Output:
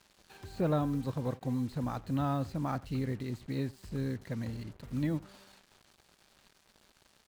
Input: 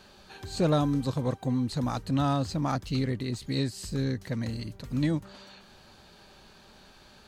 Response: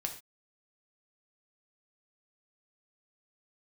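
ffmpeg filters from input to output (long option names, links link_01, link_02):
-filter_complex "[0:a]acrossover=split=2700[link_01][link_02];[link_02]acompressor=threshold=-55dB:ratio=6[link_03];[link_01][link_03]amix=inputs=2:normalize=0,acrusher=bits=7:mix=0:aa=0.5,aecho=1:1:86:0.0891,aeval=exprs='sgn(val(0))*max(abs(val(0))-0.00141,0)':channel_layout=same,volume=-5dB"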